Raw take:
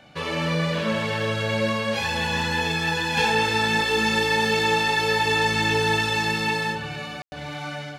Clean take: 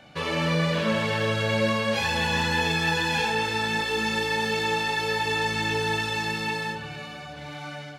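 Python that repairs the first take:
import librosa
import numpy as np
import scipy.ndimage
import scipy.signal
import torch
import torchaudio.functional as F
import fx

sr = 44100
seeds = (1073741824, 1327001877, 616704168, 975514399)

y = fx.fix_ambience(x, sr, seeds[0], print_start_s=0.0, print_end_s=0.5, start_s=7.22, end_s=7.32)
y = fx.gain(y, sr, db=fx.steps((0.0, 0.0), (3.17, -4.5)))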